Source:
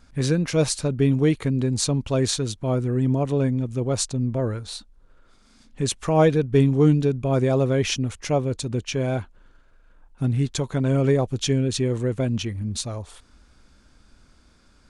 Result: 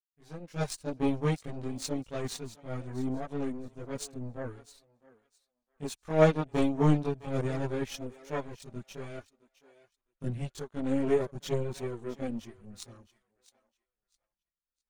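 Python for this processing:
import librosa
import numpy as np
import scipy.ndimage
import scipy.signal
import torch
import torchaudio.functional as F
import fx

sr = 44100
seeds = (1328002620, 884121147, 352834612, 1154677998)

y = fx.fade_in_head(x, sr, length_s=0.66)
y = fx.power_curve(y, sr, exponent=2.0)
y = fx.echo_thinned(y, sr, ms=661, feedback_pct=23, hz=680.0, wet_db=-16.5)
y = fx.chorus_voices(y, sr, voices=6, hz=0.18, base_ms=22, depth_ms=3.9, mix_pct=65)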